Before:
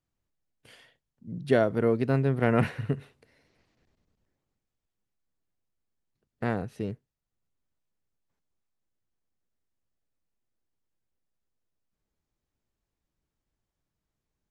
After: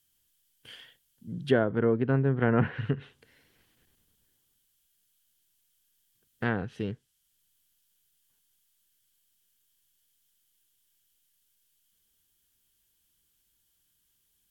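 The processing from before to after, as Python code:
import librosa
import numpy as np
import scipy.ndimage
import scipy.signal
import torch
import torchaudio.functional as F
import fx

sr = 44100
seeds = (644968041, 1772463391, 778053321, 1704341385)

y = fx.dmg_noise_colour(x, sr, seeds[0], colour='violet', level_db=-69.0)
y = fx.env_lowpass_down(y, sr, base_hz=1300.0, full_db=-21.0)
y = fx.graphic_eq_31(y, sr, hz=(630, 1600, 3150), db=(-6, 7, 12))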